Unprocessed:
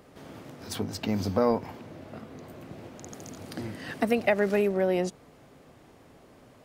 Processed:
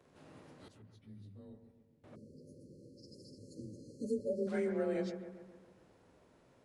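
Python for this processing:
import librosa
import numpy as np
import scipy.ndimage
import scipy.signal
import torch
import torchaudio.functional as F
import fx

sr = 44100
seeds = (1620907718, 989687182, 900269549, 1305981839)

y = fx.partial_stretch(x, sr, pct=92)
y = fx.tone_stack(y, sr, knobs='10-0-1', at=(0.68, 2.04))
y = fx.echo_bbd(y, sr, ms=137, stages=2048, feedback_pct=54, wet_db=-9.0)
y = fx.spec_erase(y, sr, start_s=2.15, length_s=2.33, low_hz=590.0, high_hz=4100.0)
y = F.gain(torch.from_numpy(y), -9.0).numpy()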